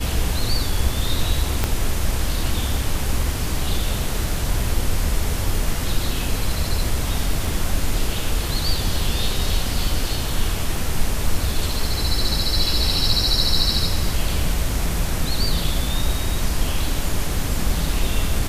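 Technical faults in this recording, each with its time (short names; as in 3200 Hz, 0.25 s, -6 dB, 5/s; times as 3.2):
1.64 pop -5 dBFS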